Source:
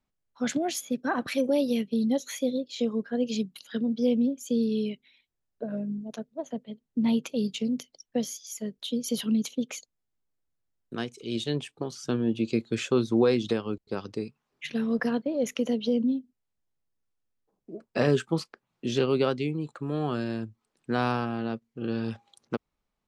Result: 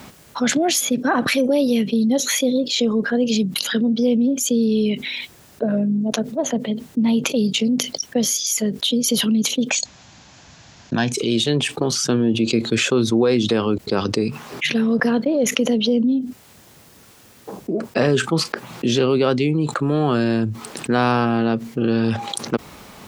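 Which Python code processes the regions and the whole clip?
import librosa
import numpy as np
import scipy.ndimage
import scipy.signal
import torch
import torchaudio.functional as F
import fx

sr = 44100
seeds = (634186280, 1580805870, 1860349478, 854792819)

y = fx.chain(x, sr, fx.comb(ms=1.2, depth=0.73),
    fx.resample_bad(factor=3, down='none', up='filtered'), at=(9.7, 11.12))
y = scipy.signal.sosfilt(scipy.signal.butter(2, 92.0, 'highpass', fs=sr, output='sos'), y)
y = fx.env_flatten(y, sr, amount_pct=70)
y = y * 10.0 ** (4.0 / 20.0)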